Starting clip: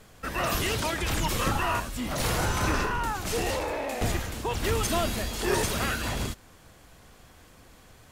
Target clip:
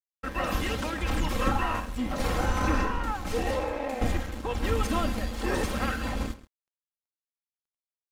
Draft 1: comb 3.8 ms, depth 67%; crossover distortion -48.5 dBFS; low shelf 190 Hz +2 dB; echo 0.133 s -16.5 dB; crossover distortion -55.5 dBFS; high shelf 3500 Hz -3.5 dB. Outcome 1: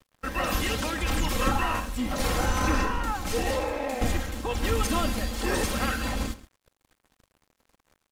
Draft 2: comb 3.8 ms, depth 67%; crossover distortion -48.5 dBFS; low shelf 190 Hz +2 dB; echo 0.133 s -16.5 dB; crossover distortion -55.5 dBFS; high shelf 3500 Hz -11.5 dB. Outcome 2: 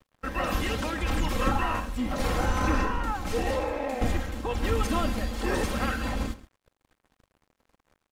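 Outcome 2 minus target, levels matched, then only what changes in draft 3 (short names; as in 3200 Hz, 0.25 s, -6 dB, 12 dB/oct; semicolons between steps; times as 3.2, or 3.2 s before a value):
first crossover distortion: distortion -7 dB
change: first crossover distortion -41 dBFS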